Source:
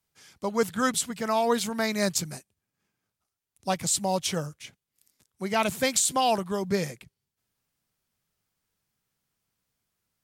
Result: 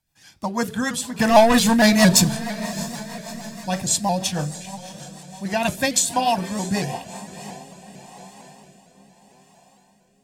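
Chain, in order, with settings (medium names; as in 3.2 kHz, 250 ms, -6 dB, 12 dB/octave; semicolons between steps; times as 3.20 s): 1.19–2.29 s: waveshaping leveller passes 3; echo that smears into a reverb 647 ms, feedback 51%, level -13.5 dB; reverberation RT60 0.45 s, pre-delay 3 ms, DRR 11.5 dB; rotary cabinet horn 6.3 Hz, later 0.8 Hz, at 6.79 s; vibrato with a chosen wave saw up 4.4 Hz, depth 100 cents; trim +4 dB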